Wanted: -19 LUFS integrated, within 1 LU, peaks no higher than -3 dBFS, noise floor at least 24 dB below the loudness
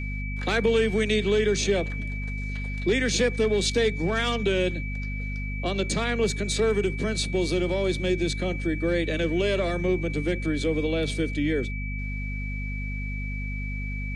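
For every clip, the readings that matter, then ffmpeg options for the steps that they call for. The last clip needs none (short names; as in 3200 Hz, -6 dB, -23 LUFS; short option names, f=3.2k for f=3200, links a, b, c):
hum 50 Hz; harmonics up to 250 Hz; hum level -29 dBFS; steady tone 2300 Hz; tone level -36 dBFS; loudness -26.5 LUFS; peak -11.5 dBFS; loudness target -19.0 LUFS
-> -af "bandreject=f=50:t=h:w=4,bandreject=f=100:t=h:w=4,bandreject=f=150:t=h:w=4,bandreject=f=200:t=h:w=4,bandreject=f=250:t=h:w=4"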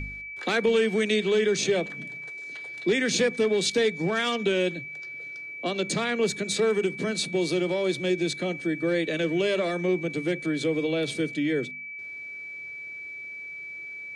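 hum none; steady tone 2300 Hz; tone level -36 dBFS
-> -af "bandreject=f=2.3k:w=30"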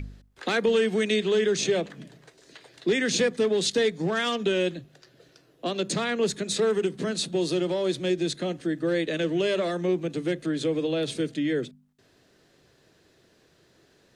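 steady tone none; loudness -26.0 LUFS; peak -13.0 dBFS; loudness target -19.0 LUFS
-> -af "volume=7dB"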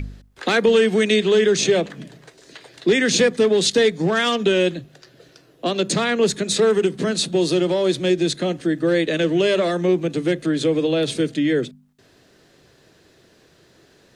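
loudness -19.0 LUFS; peak -6.0 dBFS; noise floor -55 dBFS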